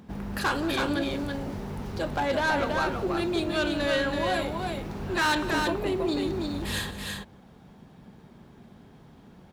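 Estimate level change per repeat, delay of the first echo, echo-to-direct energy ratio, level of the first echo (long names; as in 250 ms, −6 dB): repeats not evenly spaced, 180 ms, −4.0 dB, −16.5 dB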